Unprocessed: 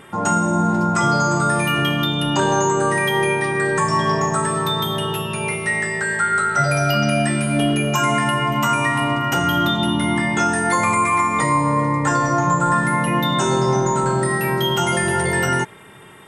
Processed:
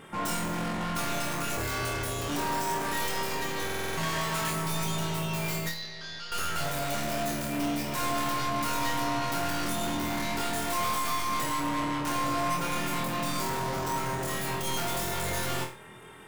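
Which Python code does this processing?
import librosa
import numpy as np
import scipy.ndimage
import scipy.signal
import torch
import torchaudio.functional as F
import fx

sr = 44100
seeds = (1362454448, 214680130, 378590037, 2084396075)

y = fx.tracing_dist(x, sr, depth_ms=0.4)
y = fx.ring_mod(y, sr, carrier_hz=260.0, at=(1.56, 2.28), fade=0.02)
y = fx.peak_eq(y, sr, hz=2300.0, db=13.5, octaves=2.1, at=(4.03, 4.51))
y = np.clip(y, -10.0 ** (-23.5 / 20.0), 10.0 ** (-23.5 / 20.0))
y = fx.ladder_lowpass(y, sr, hz=5000.0, resonance_pct=75, at=(5.69, 6.32))
y = fx.room_flutter(y, sr, wall_m=4.2, rt60_s=0.34)
y = fx.buffer_glitch(y, sr, at_s=(3.65,), block=2048, repeats=6)
y = y * 10.0 ** (-7.0 / 20.0)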